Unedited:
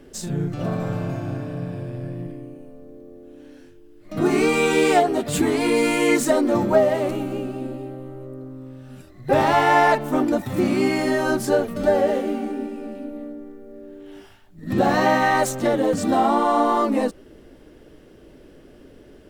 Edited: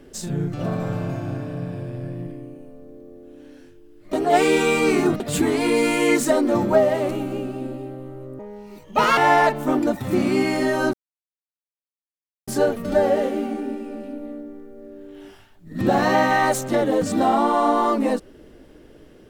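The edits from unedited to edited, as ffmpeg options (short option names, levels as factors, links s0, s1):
-filter_complex "[0:a]asplit=6[s0][s1][s2][s3][s4][s5];[s0]atrim=end=4.132[s6];[s1]atrim=start=4.128:end=5.202,asetpts=PTS-STARTPTS,areverse[s7];[s2]atrim=start=5.198:end=8.394[s8];[s3]atrim=start=8.39:end=9.63,asetpts=PTS-STARTPTS,asetrate=69678,aresample=44100,atrim=end_sample=34610,asetpts=PTS-STARTPTS[s9];[s4]atrim=start=9.626:end=11.39,asetpts=PTS-STARTPTS,afade=t=out:st=1.76:d=0.004:c=hsin,apad=pad_dur=1.54[s10];[s5]atrim=start=11.39,asetpts=PTS-STARTPTS,afade=t=in:d=0.004:c=hsin[s11];[s6][s7]acrossfade=d=0.004:c1=hsin:c2=hsin[s12];[s12][s8]acrossfade=d=0.004:c1=hsin:c2=hsin[s13];[s13][s9]acrossfade=d=0.004:c1=hsin:c2=hsin[s14];[s10][s11]concat=n=2:v=0:a=1[s15];[s14][s15]acrossfade=d=0.004:c1=hsin:c2=hsin"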